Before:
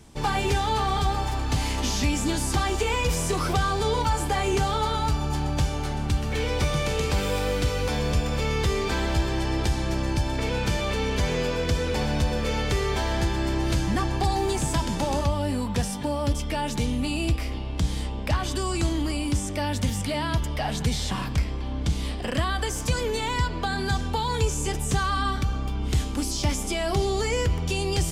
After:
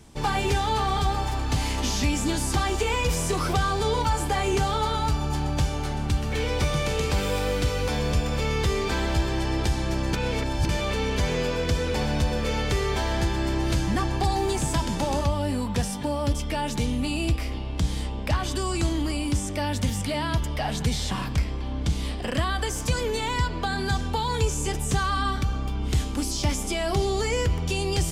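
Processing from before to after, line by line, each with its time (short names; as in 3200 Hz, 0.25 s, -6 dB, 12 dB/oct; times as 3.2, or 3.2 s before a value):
10.13–10.69 reverse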